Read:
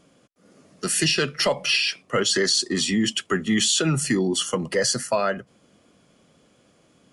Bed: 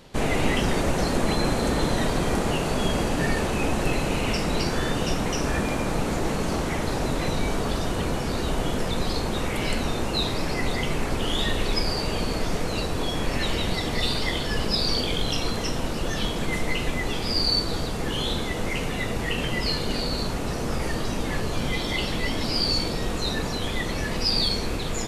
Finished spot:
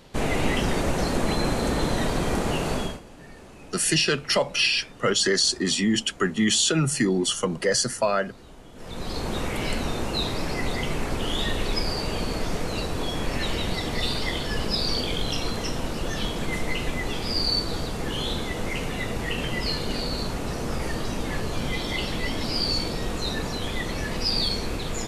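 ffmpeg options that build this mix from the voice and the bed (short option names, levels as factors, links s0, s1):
-filter_complex "[0:a]adelay=2900,volume=0.944[s0];[1:a]volume=8.91,afade=t=out:st=2.74:d=0.26:silence=0.0944061,afade=t=in:st=8.74:d=0.58:silence=0.1[s1];[s0][s1]amix=inputs=2:normalize=0"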